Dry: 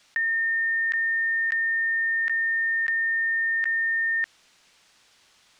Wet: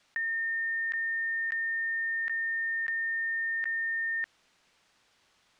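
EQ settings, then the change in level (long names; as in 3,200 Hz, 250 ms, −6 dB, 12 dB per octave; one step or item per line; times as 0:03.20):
high-shelf EQ 2,400 Hz −7.5 dB
−4.0 dB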